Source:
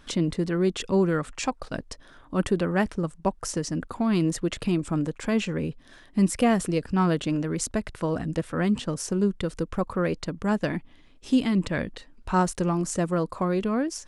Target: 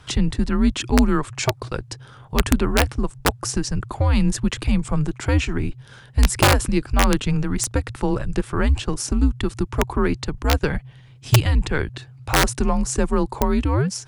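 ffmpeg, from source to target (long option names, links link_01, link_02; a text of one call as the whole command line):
ffmpeg -i in.wav -af "afreqshift=-140,aeval=exprs='(mod(4.22*val(0)+1,2)-1)/4.22':channel_layout=same,volume=6dB" out.wav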